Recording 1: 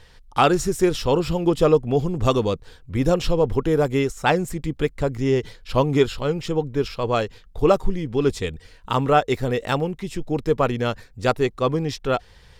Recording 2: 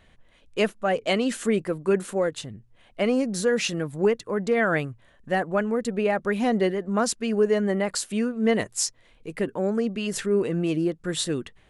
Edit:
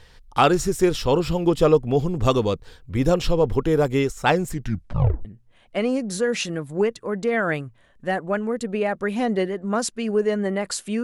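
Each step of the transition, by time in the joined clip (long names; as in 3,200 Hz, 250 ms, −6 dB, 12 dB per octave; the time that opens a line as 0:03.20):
recording 1
0:04.50: tape stop 0.75 s
0:05.25: continue with recording 2 from 0:02.49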